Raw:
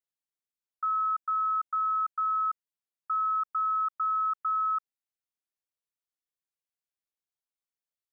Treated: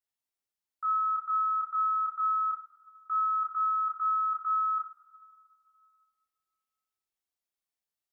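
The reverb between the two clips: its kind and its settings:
coupled-rooms reverb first 0.34 s, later 2.1 s, from −18 dB, DRR −1.5 dB
level −2.5 dB

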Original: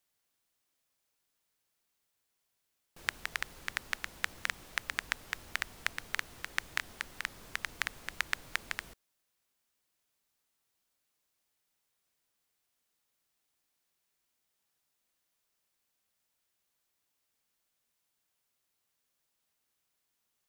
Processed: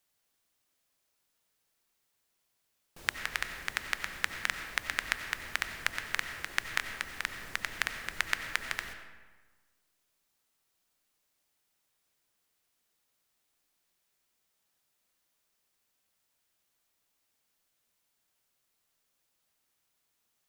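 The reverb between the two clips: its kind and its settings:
comb and all-pass reverb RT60 1.4 s, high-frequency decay 0.65×, pre-delay 50 ms, DRR 7 dB
level +2.5 dB

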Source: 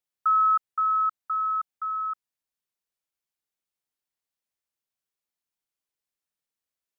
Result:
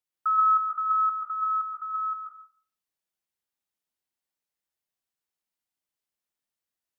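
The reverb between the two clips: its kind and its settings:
dense smooth reverb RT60 0.5 s, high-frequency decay 0.7×, pre-delay 115 ms, DRR 0 dB
level −3 dB

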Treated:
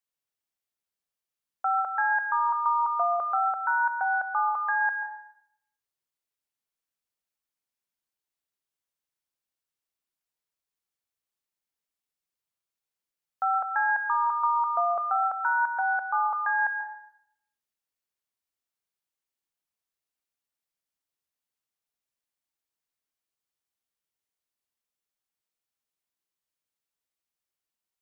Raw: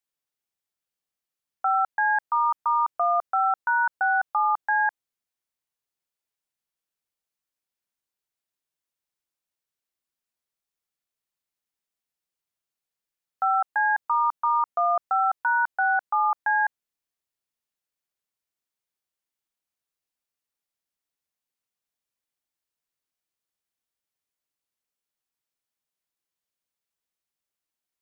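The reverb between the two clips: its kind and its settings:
dense smooth reverb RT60 0.71 s, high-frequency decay 1×, pre-delay 115 ms, DRR 6.5 dB
level −3 dB

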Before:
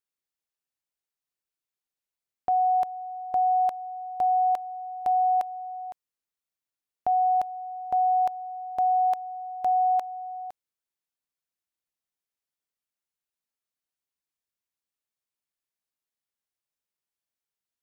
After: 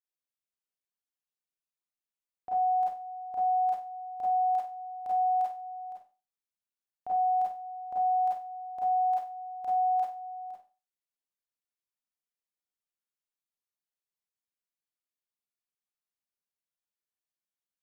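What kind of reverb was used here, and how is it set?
four-comb reverb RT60 0.33 s, combs from 31 ms, DRR −6.5 dB
level −14.5 dB

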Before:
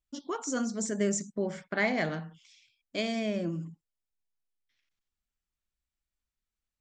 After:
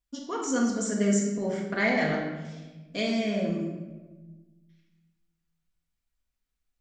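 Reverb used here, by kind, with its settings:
rectangular room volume 810 cubic metres, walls mixed, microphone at 1.8 metres

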